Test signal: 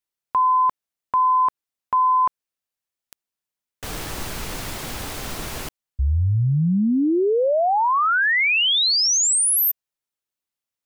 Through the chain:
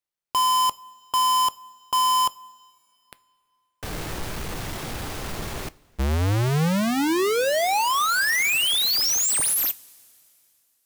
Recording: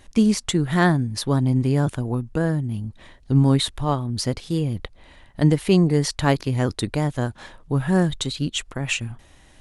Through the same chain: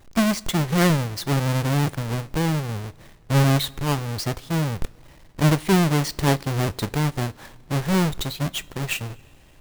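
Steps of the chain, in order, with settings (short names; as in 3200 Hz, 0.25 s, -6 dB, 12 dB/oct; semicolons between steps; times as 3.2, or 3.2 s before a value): half-waves squared off; two-slope reverb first 0.25 s, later 2.8 s, from -18 dB, DRR 15.5 dB; gain -6 dB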